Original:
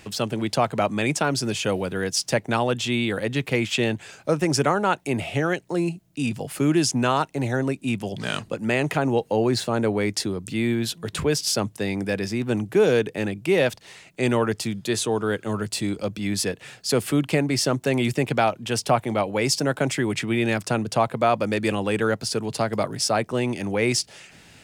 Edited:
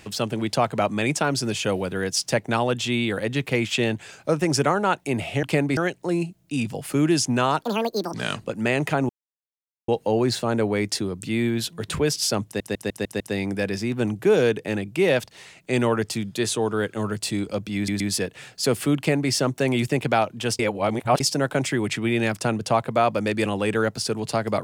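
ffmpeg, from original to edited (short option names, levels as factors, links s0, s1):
-filter_complex "[0:a]asplit=15[s0][s1][s2][s3][s4][s5][s6][s7][s8][s9][s10][s11][s12][s13][s14];[s0]atrim=end=5.432[s15];[s1]atrim=start=17.228:end=17.572[s16];[s2]atrim=start=5.428:end=7.274[s17];[s3]atrim=start=7.27:end=8.18,asetpts=PTS-STARTPTS,asetrate=75411,aresample=44100,atrim=end_sample=23468,asetpts=PTS-STARTPTS[s18];[s4]atrim=start=8.176:end=9.13,asetpts=PTS-STARTPTS,afade=t=out:st=0.95:d=0.004:c=hsin,apad=pad_dur=0.79[s19];[s5]atrim=start=9.13:end=11.852,asetpts=PTS-STARTPTS,afade=t=in:d=0.004:c=hsin[s20];[s6]atrim=start=11.698:end=11.852[s21];[s7]atrim=start=11.698:end=11.852[s22];[s8]atrim=start=11.698:end=11.852[s23];[s9]atrim=start=11.698:end=11.852[s24];[s10]atrim=start=11.698:end=16.382[s25];[s11]atrim=start=16.258:end=16.382[s26];[s12]atrim=start=16.258:end=18.852[s27];[s13]atrim=start=18.848:end=19.462,asetpts=PTS-STARTPTS,areverse[s28];[s14]atrim=start=19.458[s29];[s15][s16]acrossfade=d=0.004:c1=hsin:c2=hsin[s30];[s30][s17]acrossfade=d=0.004:c1=hsin:c2=hsin[s31];[s31][s18]acrossfade=d=0.004:c1=hsin:c2=hsin[s32];[s19][s20]concat=n=2:v=0:a=1[s33];[s32][s33]acrossfade=d=0.004:c1=hsin:c2=hsin[s34];[s34][s21]acrossfade=d=0.004:c1=hsin:c2=hsin[s35];[s35][s22]acrossfade=d=0.004:c1=hsin:c2=hsin[s36];[s36][s23]acrossfade=d=0.004:c1=hsin:c2=hsin[s37];[s37][s24]acrossfade=d=0.004:c1=hsin:c2=hsin[s38];[s38][s25]acrossfade=d=0.004:c1=hsin:c2=hsin[s39];[s39][s26]acrossfade=d=0.004:c1=hsin:c2=hsin[s40];[s40][s27]acrossfade=d=0.004:c1=hsin:c2=hsin[s41];[s41][s28]acrossfade=d=0.004:c1=hsin:c2=hsin[s42];[s42][s29]acrossfade=d=0.004:c1=hsin:c2=hsin"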